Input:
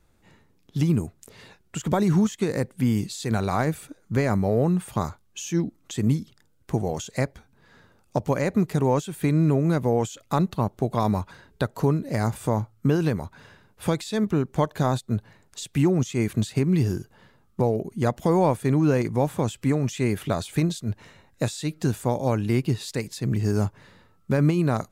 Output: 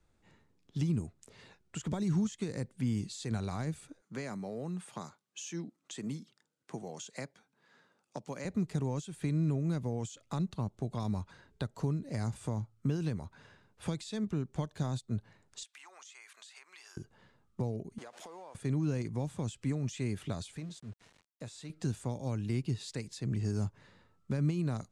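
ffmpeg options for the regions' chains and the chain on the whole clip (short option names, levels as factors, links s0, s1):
-filter_complex "[0:a]asettb=1/sr,asplit=3[s0][s1][s2];[s0]atrim=end=4.014[s3];[s1]atrim=start=4.01:end=8.45,asetpts=PTS-STARTPTS,afade=t=in:d=0.004:c=qsin,afade=t=out:st=4.436:d=0.004:c=qsin,highpass=f=150:w=0.5412,highpass=f=150:w=1.3066,lowshelf=f=430:g=-6.5[s4];[s2]atrim=start=8.446[s5];[s3][s4]acrossfade=d=0.004:c1=hsin:c2=qsin[s6];[s6][s5]acrossfade=d=0.004:c1=qsin:c2=hsin,asettb=1/sr,asplit=3[s7][s8][s9];[s7]atrim=end=15.634[s10];[s8]atrim=start=15.63:end=16.97,asetpts=PTS-STARTPTS,afade=t=in:d=0.004:c=qsin,afade=t=out:st=1.336:d=0.004:c=qsin,highpass=f=950:w=0.5412,highpass=f=950:w=1.3066,acompressor=threshold=0.00891:ratio=6:attack=3.2:release=140:knee=1:detection=peak[s11];[s9]atrim=start=16.966[s12];[s10][s11]acrossfade=d=0.004:c1=hsin:c2=qsin[s13];[s13][s12]acrossfade=d=0.004:c1=qsin:c2=hsin,asettb=1/sr,asplit=3[s14][s15][s16];[s14]atrim=end=17.984[s17];[s15]atrim=start=17.98:end=18.55,asetpts=PTS-STARTPTS,afade=t=in:d=0.004:c=qsin,afade=t=out:st=0.566:d=0.004:c=qsin,aeval=exprs='val(0)+0.5*0.0237*sgn(val(0))':c=same,highpass=580,acompressor=threshold=0.0178:ratio=16:attack=3.2:release=140:knee=1:detection=peak[s18];[s16]atrim=start=18.546[s19];[s17][s18]acrossfade=d=0.004:c1=hsin:c2=qsin[s20];[s20][s19]acrossfade=d=0.004:c1=qsin:c2=hsin,asettb=1/sr,asplit=3[s21][s22][s23];[s21]atrim=end=20.524[s24];[s22]atrim=start=20.52:end=21.7,asetpts=PTS-STARTPTS,afade=t=in:d=0.004:c=qsin,afade=t=out:st=1.176:d=0.004:c=qsin,bandreject=f=340:w=8.4,acompressor=threshold=0.00398:ratio=1.5:attack=3.2:release=140:knee=1:detection=peak,aeval=exprs='val(0)*gte(abs(val(0)),0.00447)':c=same[s25];[s23]atrim=start=21.696[s26];[s24][s25]acrossfade=d=0.004:c1=hsin:c2=qsin[s27];[s27][s26]acrossfade=d=0.004:c1=qsin:c2=hsin,lowpass=f=9400:w=0.5412,lowpass=f=9400:w=1.3066,acrossover=split=250|3000[s28][s29][s30];[s29]acompressor=threshold=0.0178:ratio=2.5[s31];[s28][s31][s30]amix=inputs=3:normalize=0,volume=0.376"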